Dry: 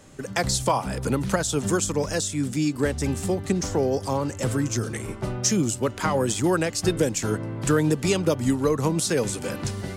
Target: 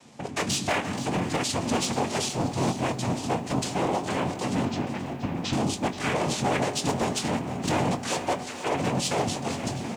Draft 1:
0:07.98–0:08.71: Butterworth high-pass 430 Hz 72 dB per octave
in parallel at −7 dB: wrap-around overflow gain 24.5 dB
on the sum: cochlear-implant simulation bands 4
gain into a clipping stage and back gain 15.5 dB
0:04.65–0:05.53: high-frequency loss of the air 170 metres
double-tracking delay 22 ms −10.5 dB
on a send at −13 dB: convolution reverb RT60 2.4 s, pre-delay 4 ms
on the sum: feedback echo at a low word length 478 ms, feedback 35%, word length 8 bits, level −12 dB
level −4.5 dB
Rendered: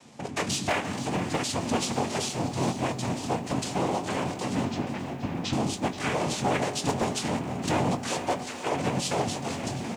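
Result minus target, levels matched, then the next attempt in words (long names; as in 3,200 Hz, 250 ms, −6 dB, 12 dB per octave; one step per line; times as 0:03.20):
wrap-around overflow: distortion +14 dB
0:07.98–0:08.71: Butterworth high-pass 430 Hz 72 dB per octave
in parallel at −7 dB: wrap-around overflow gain 17 dB
on the sum: cochlear-implant simulation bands 4
gain into a clipping stage and back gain 15.5 dB
0:04.65–0:05.53: high-frequency loss of the air 170 metres
double-tracking delay 22 ms −10.5 dB
on a send at −13 dB: convolution reverb RT60 2.4 s, pre-delay 4 ms
on the sum: feedback echo at a low word length 478 ms, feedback 35%, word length 8 bits, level −12 dB
level −4.5 dB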